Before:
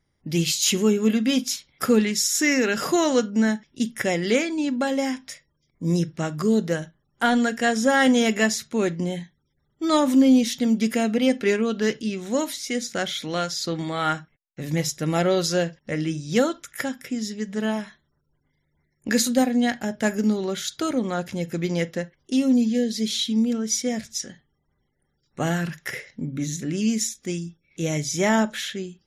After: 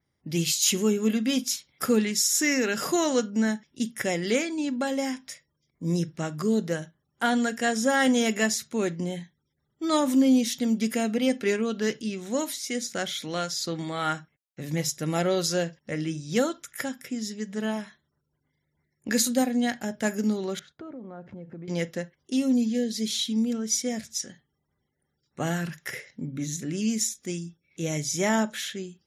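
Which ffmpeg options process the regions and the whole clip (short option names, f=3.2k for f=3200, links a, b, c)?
-filter_complex "[0:a]asettb=1/sr,asplit=3[a][b][c];[a]atrim=end=20.594[d];[b]atrim=start=20.59:end=21.68,asetpts=PTS-STARTPTS,afade=t=in:d=0.004:c=qsin,afade=t=out:st=1.086:d=0.004:c=qsin,lowpass=1.1k,acompressor=threshold=-34dB:ratio=5:attack=3.2:release=140:knee=1:detection=peak,agate=range=-11dB:threshold=-58dB:ratio=16:release=100:detection=peak[e];[c]atrim=start=21.676[f];[d][e]acrossfade=d=0.004:c1=hsin:c2=qsin[g];[g][f]acrossfade=d=0.004:c1=qsin:c2=hsin,highpass=66,adynamicequalizer=threshold=0.0126:dfrequency=5600:dqfactor=0.7:tfrequency=5600:tqfactor=0.7:attack=5:release=100:ratio=0.375:range=2.5:mode=boostabove:tftype=highshelf,volume=-4dB"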